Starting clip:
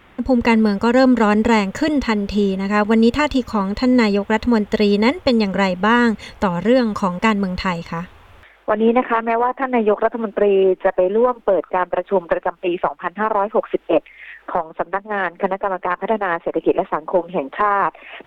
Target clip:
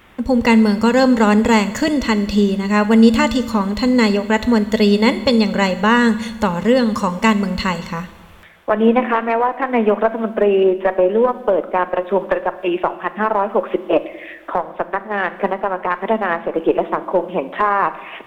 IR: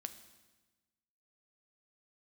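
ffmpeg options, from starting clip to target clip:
-filter_complex "[0:a]asplit=2[s0][s1];[1:a]atrim=start_sample=2205,highshelf=f=5000:g=11.5[s2];[s1][s2]afir=irnorm=-1:irlink=0,volume=3.55[s3];[s0][s3]amix=inputs=2:normalize=0,volume=0.316"

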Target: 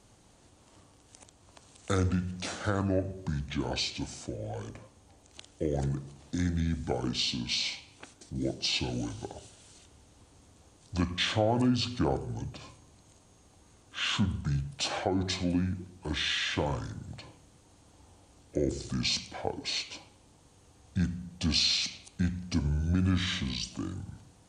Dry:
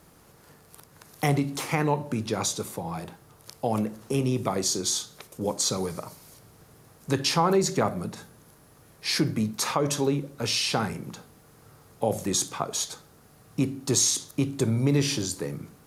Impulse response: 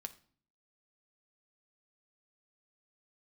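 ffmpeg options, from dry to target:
-af "asetrate=28577,aresample=44100,volume=0.596"

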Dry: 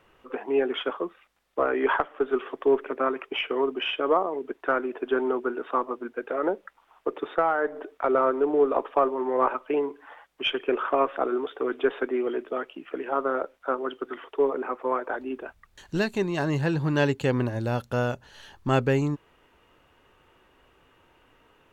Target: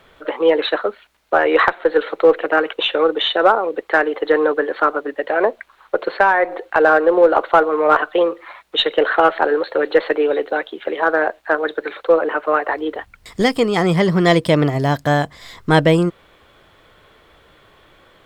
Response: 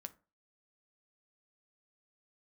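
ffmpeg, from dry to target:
-filter_complex "[0:a]asplit=2[s0][s1];[s1]volume=5.62,asoftclip=hard,volume=0.178,volume=0.562[s2];[s0][s2]amix=inputs=2:normalize=0,asetrate=52479,aresample=44100,volume=2"

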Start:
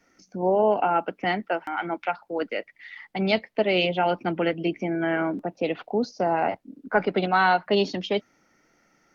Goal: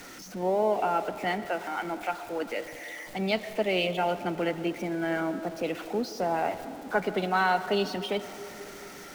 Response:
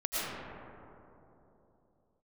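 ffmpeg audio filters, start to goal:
-filter_complex "[0:a]aeval=exprs='val(0)+0.5*0.0188*sgn(val(0))':c=same,asplit=2[s0][s1];[s1]highpass=260[s2];[1:a]atrim=start_sample=2205[s3];[s2][s3]afir=irnorm=-1:irlink=0,volume=0.112[s4];[s0][s4]amix=inputs=2:normalize=0,volume=0.501"

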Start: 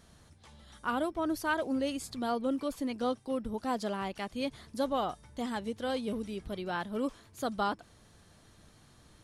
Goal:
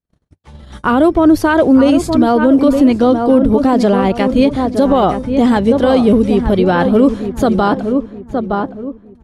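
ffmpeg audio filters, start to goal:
-filter_complex "[0:a]agate=range=0.00178:threshold=0.00224:ratio=16:detection=peak,highshelf=f=4200:g=-9,acrossover=split=550[s0][s1];[s0]acontrast=75[s2];[s2][s1]amix=inputs=2:normalize=0,equalizer=f=220:w=7.5:g=-3,asplit=2[s3][s4];[s4]adelay=916,lowpass=f=1500:p=1,volume=0.398,asplit=2[s5][s6];[s6]adelay=916,lowpass=f=1500:p=1,volume=0.34,asplit=2[s7][s8];[s8]adelay=916,lowpass=f=1500:p=1,volume=0.34,asplit=2[s9][s10];[s10]adelay=916,lowpass=f=1500:p=1,volume=0.34[s11];[s3][s5][s7][s9][s11]amix=inputs=5:normalize=0,alimiter=level_in=11.9:limit=0.891:release=50:level=0:latency=1,volume=0.891"

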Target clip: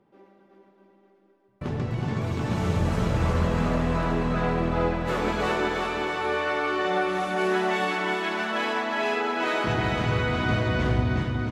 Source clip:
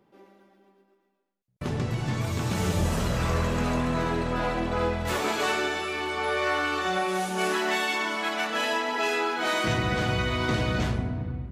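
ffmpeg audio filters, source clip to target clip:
-af "lowpass=f=2200:p=1,aecho=1:1:370|666|902.8|1092|1244:0.631|0.398|0.251|0.158|0.1"

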